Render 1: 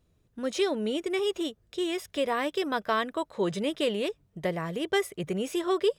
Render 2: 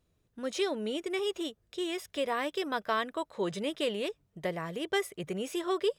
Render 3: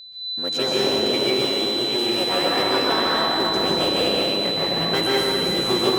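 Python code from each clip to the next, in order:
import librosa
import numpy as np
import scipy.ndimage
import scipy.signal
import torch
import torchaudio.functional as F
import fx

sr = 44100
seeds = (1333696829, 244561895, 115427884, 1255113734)

y1 = fx.low_shelf(x, sr, hz=350.0, db=-4.0)
y1 = F.gain(torch.from_numpy(y1), -2.5).numpy()
y2 = fx.cycle_switch(y1, sr, every=3, mode='muted')
y2 = y2 + 10.0 ** (-43.0 / 20.0) * np.sin(2.0 * np.pi * 4000.0 * np.arange(len(y2)) / sr)
y2 = fx.rev_plate(y2, sr, seeds[0], rt60_s=3.2, hf_ratio=0.85, predelay_ms=115, drr_db=-7.0)
y2 = F.gain(torch.from_numpy(y2), 4.5).numpy()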